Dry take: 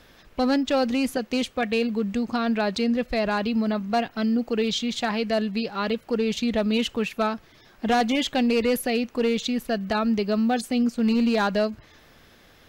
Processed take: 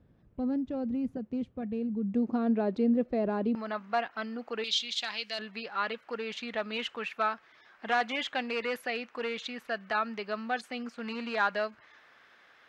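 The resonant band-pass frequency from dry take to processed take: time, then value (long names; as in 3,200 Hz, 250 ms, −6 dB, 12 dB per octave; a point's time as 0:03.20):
resonant band-pass, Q 1.2
120 Hz
from 0:02.14 330 Hz
from 0:03.55 1,300 Hz
from 0:04.64 3,700 Hz
from 0:05.39 1,500 Hz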